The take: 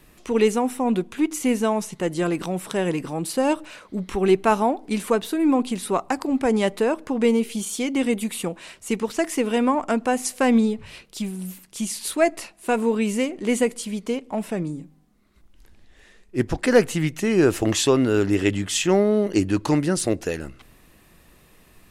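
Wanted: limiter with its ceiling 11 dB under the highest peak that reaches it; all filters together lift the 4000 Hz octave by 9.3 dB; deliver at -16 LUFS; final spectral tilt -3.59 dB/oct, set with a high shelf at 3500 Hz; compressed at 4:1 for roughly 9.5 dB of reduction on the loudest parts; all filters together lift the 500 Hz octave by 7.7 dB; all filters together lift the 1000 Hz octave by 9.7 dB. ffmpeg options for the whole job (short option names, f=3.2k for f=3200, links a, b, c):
-af "equalizer=f=500:t=o:g=7,equalizer=f=1k:t=o:g=9,highshelf=f=3.5k:g=8,equalizer=f=4k:t=o:g=6,acompressor=threshold=-13dB:ratio=4,volume=6.5dB,alimiter=limit=-6dB:level=0:latency=1"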